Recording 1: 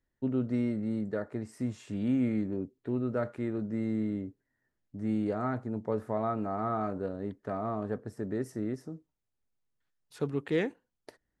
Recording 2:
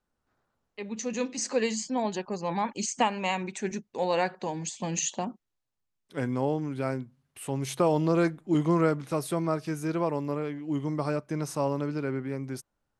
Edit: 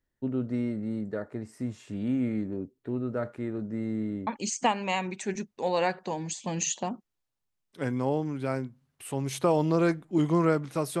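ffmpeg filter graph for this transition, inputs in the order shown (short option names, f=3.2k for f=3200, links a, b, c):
-filter_complex "[0:a]apad=whole_dur=11,atrim=end=11,atrim=end=4.272[a];[1:a]atrim=start=2.628:end=9.36[b];[a][b]acrossfade=d=0.004:c1=hsin:c2=hsin"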